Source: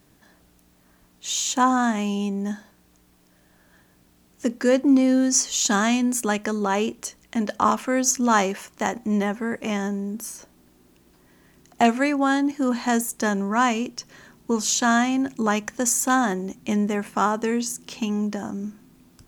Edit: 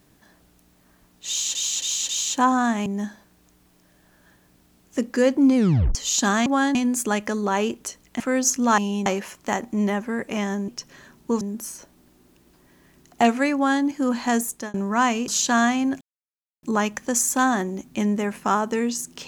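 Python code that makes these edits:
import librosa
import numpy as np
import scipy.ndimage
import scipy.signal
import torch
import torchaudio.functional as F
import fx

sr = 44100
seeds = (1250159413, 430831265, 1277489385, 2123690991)

y = fx.edit(x, sr, fx.repeat(start_s=1.28, length_s=0.27, count=4),
    fx.move(start_s=2.05, length_s=0.28, to_s=8.39),
    fx.tape_stop(start_s=5.03, length_s=0.39),
    fx.cut(start_s=7.38, length_s=0.43),
    fx.duplicate(start_s=12.15, length_s=0.29, to_s=5.93),
    fx.fade_out_span(start_s=13.09, length_s=0.25),
    fx.move(start_s=13.88, length_s=0.73, to_s=10.01),
    fx.insert_silence(at_s=15.34, length_s=0.62), tone=tone)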